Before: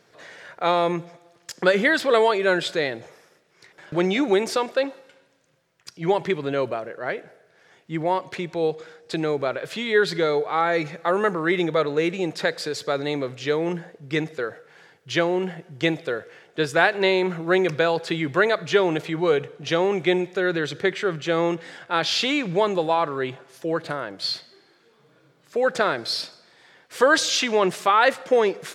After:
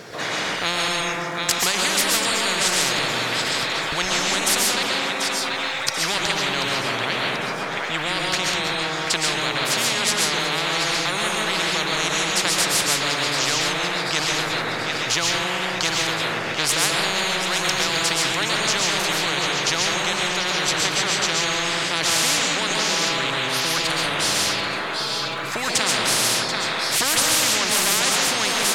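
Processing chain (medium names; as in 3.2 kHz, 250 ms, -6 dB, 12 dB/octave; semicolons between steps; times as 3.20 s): two-band feedback delay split 990 Hz, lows 146 ms, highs 736 ms, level -14 dB; vibrato 6.6 Hz 9.8 cents; reverberation RT60 0.70 s, pre-delay 95 ms, DRR -3.5 dB; spectrum-flattening compressor 10:1; trim -1 dB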